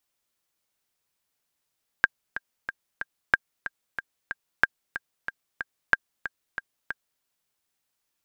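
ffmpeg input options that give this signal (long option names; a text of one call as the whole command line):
ffmpeg -f lavfi -i "aevalsrc='pow(10,(-4-13*gte(mod(t,4*60/185),60/185))/20)*sin(2*PI*1600*mod(t,60/185))*exp(-6.91*mod(t,60/185)/0.03)':duration=5.18:sample_rate=44100" out.wav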